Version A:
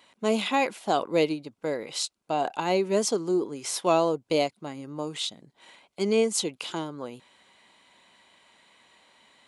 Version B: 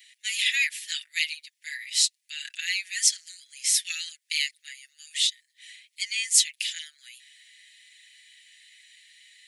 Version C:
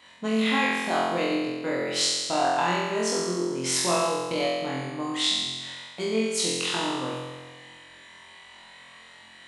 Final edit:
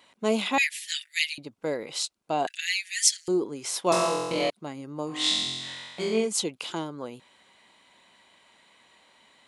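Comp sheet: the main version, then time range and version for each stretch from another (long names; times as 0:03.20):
A
0:00.58–0:01.38: punch in from B
0:02.47–0:03.28: punch in from B
0:03.92–0:04.50: punch in from C
0:05.16–0:06.20: punch in from C, crossfade 0.24 s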